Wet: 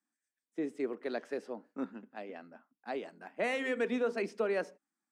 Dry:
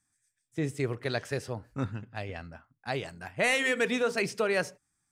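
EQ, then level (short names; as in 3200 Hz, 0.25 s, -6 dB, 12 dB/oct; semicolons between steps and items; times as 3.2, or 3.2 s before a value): steep high-pass 210 Hz 48 dB/oct; tilt -4 dB/oct; low shelf 280 Hz -8 dB; -5.5 dB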